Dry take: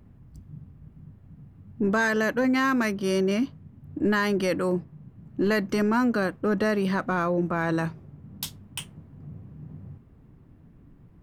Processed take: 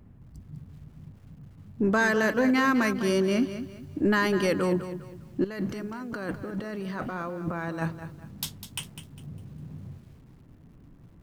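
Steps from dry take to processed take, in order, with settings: 5.44–7.82 s: compressor with a negative ratio -34 dBFS, ratio -1; bit-crushed delay 202 ms, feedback 35%, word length 9-bit, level -11 dB

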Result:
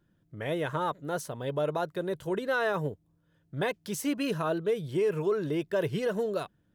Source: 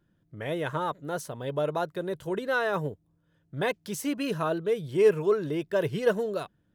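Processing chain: peak limiter -20 dBFS, peak gain reduction 9 dB

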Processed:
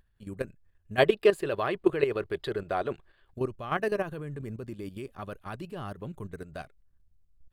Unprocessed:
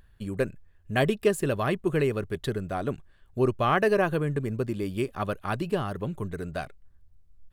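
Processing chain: level held to a coarse grid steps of 11 dB; time-frequency box 0.99–3.32 s, 320–5100 Hz +10 dB; trim -4 dB

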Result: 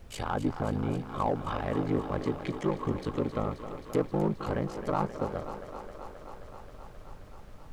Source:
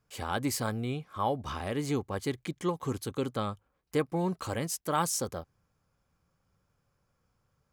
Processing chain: low-pass that closes with the level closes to 940 Hz, closed at -27.5 dBFS; ring modulator 26 Hz; in parallel at -4.5 dB: overload inside the chain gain 31 dB; on the sum: added noise brown -48 dBFS; on a send: thinning echo 265 ms, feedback 81%, high-pass 190 Hz, level -10 dB; on the sum: trim +1.5 dB

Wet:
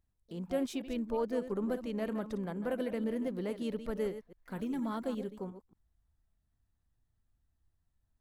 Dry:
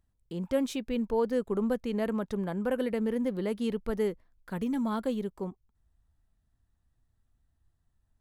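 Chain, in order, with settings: chunks repeated in reverse 117 ms, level -11 dB; harmony voices +5 st -16 dB; trim -5.5 dB

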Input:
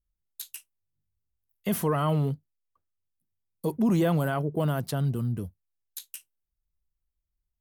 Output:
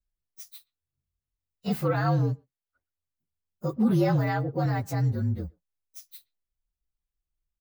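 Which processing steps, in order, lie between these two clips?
frequency axis rescaled in octaves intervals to 115%; speakerphone echo 120 ms, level -27 dB; trim +2 dB

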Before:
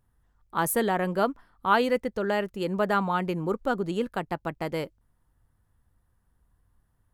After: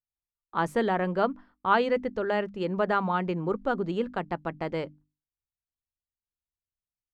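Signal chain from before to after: spectral noise reduction 7 dB; gate -53 dBFS, range -27 dB; distance through air 140 m; hum notches 50/100/150/200/250/300 Hz

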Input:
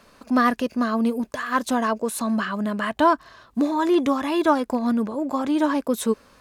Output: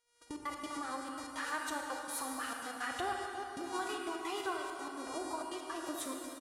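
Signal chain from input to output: reverb removal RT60 0.7 s; mains buzz 400 Hz, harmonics 28, -42 dBFS -1 dB/octave; feedback comb 410 Hz, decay 0.61 s, mix 70%; dynamic bell 400 Hz, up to -4 dB, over -45 dBFS, Q 2; gate -46 dBFS, range -36 dB; delay 339 ms -19 dB; compression 5:1, threshold -41 dBFS, peak gain reduction 16 dB; peaking EQ 200 Hz -13 dB 0.91 oct; formant-preserving pitch shift +3 st; trance gate "xxxx.x.x" 166 bpm -60 dB; reverberation RT60 2.9 s, pre-delay 28 ms, DRR 1 dB; trim +5.5 dB

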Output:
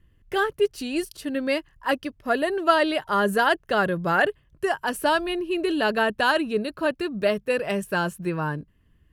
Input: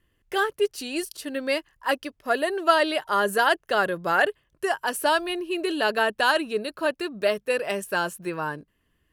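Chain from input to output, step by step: tone controls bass +12 dB, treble -4 dB

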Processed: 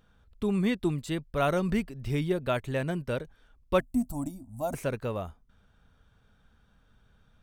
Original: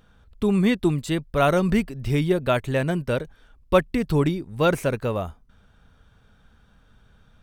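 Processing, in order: 3.80–4.74 s: FFT filter 120 Hz 0 dB, 160 Hz -15 dB, 250 Hz +7 dB, 430 Hz -30 dB, 650 Hz +6 dB, 1.8 kHz -24 dB, 4 kHz -17 dB, 7.5 kHz +8 dB; trim -7 dB

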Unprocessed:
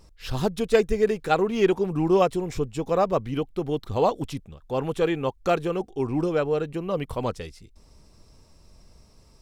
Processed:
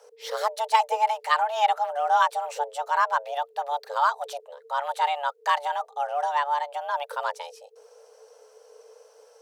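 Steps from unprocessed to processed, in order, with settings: frequency shift +430 Hz; dynamic bell 430 Hz, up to -5 dB, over -38 dBFS, Q 1.1

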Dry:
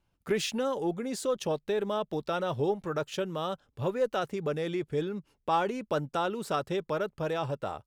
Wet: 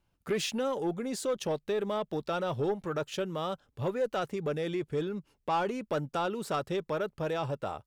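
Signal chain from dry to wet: saturation -22 dBFS, distortion -19 dB

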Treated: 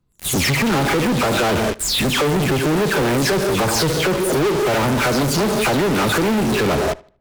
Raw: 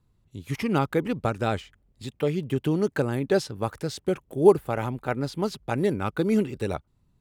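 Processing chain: delay that grows with frequency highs early, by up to 222 ms; peaking EQ 540 Hz +2 dB 2.9 oct; on a send at -12 dB: reverberation, pre-delay 3 ms; on the sum: compression 6:1, threshold -34 dBFS, peak gain reduction 23 dB; in parallel at -4 dB: fuzz box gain 62 dB, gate -55 dBFS; on the sum: filtered feedback delay 77 ms, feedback 31%, low-pass 4.8 kHz, level -22 dB

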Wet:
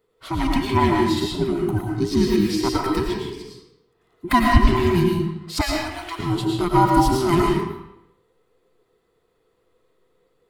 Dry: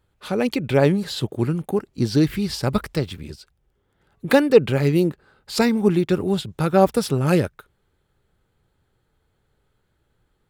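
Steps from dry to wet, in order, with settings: every band turned upside down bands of 500 Hz; 5.61–6.19 s: steep high-pass 520 Hz 36 dB/octave; reverberation RT60 0.80 s, pre-delay 70 ms, DRR -1.5 dB; trim -2 dB

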